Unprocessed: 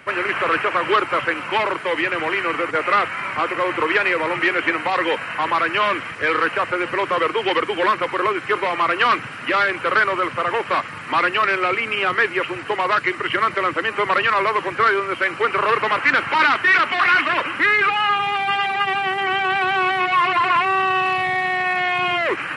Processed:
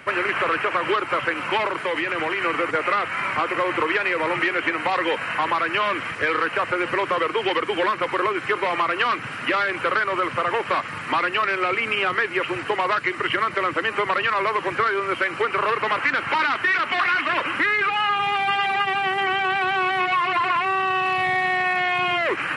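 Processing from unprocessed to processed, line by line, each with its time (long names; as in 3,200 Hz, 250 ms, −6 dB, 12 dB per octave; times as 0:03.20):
0:01.67–0:02.42: downward compressor, threshold −21 dBFS
whole clip: downward compressor, threshold −20 dBFS; level +1.5 dB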